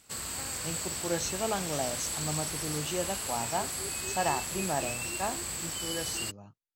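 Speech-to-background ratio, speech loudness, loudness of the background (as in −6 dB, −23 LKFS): −2.5 dB, −35.5 LKFS, −33.0 LKFS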